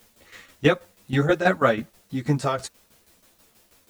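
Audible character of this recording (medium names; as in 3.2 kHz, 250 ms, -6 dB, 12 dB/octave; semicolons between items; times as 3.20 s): a quantiser's noise floor 10-bit, dither triangular; tremolo saw down 6.2 Hz, depth 75%; a shimmering, thickened sound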